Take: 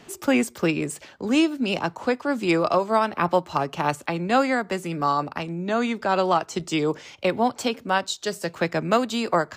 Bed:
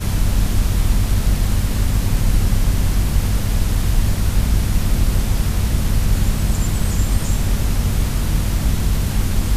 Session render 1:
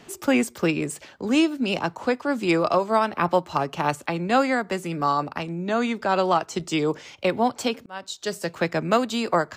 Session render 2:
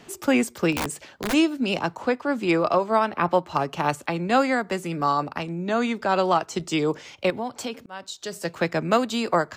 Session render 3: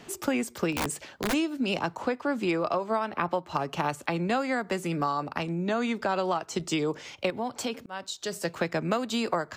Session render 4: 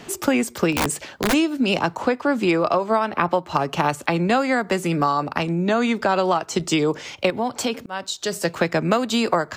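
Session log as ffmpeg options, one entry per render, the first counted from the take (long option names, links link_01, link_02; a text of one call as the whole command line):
ffmpeg -i in.wav -filter_complex "[0:a]asplit=2[link_01][link_02];[link_01]atrim=end=7.86,asetpts=PTS-STARTPTS,afade=type=out:start_time=7.856:duration=0.004:curve=hsin[link_03];[link_02]atrim=start=7.86,asetpts=PTS-STARTPTS,afade=type=in:duration=0.46[link_04];[link_03][link_04]concat=n=2:v=0:a=1" out.wav
ffmpeg -i in.wav -filter_complex "[0:a]asplit=3[link_01][link_02][link_03];[link_01]afade=type=out:start_time=0.72:duration=0.02[link_04];[link_02]aeval=exprs='(mod(10.6*val(0)+1,2)-1)/10.6':channel_layout=same,afade=type=in:start_time=0.72:duration=0.02,afade=type=out:start_time=1.32:duration=0.02[link_05];[link_03]afade=type=in:start_time=1.32:duration=0.02[link_06];[link_04][link_05][link_06]amix=inputs=3:normalize=0,asettb=1/sr,asplit=3[link_07][link_08][link_09];[link_07]atrim=end=2.024[link_10];[link_08]atrim=start=2.02:end=3.55,asetpts=PTS-STARTPTS,afade=type=in:duration=0.004:curve=qsin,afade=type=out:start_time=1.526:duration=0.004:curve=qsin,bass=frequency=250:gain=-1,treble=frequency=4000:gain=-5[link_11];[link_09]atrim=start=3.546[link_12];[link_10][link_11]acrossfade=duration=0.004:curve1=hsin:curve2=qsin[link_13];[link_13][link_12]acrossfade=duration=0.004:curve1=qsin:curve2=hsin,asettb=1/sr,asplit=3[link_14][link_15][link_16];[link_14]atrim=end=7.304[link_17];[link_15]atrim=start=7.3:end=8.45,asetpts=PTS-STARTPTS,afade=type=in:duration=0.004:curve=qsin,afade=type=out:start_time=1.146:duration=0.004:curve=qsin,acompressor=threshold=-31dB:ratio=2:attack=3.2:release=140:knee=1:detection=peak[link_18];[link_16]atrim=start=8.446[link_19];[link_17][link_18]acrossfade=duration=0.004:curve1=hsin:curve2=qsin[link_20];[link_20][link_19]acrossfade=duration=0.004:curve1=qsin:curve2=hsin" out.wav
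ffmpeg -i in.wav -af "acompressor=threshold=-24dB:ratio=6" out.wav
ffmpeg -i in.wav -af "volume=8dB" out.wav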